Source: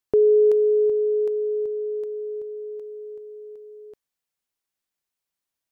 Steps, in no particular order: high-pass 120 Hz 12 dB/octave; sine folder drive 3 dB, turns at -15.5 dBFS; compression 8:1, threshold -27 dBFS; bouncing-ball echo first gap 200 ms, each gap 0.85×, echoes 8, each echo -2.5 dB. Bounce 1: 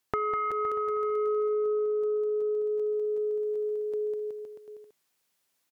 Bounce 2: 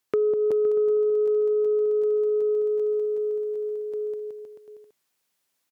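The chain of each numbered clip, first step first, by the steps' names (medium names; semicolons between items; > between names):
high-pass > sine folder > bouncing-ball echo > compression; bouncing-ball echo > compression > sine folder > high-pass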